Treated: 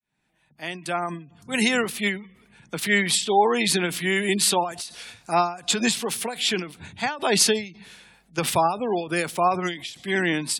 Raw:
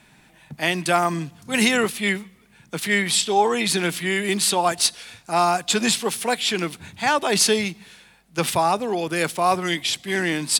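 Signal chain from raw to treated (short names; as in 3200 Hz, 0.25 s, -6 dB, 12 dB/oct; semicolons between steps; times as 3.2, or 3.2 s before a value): opening faded in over 2.23 s; spectral gate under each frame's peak -30 dB strong; ending taper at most 130 dB/s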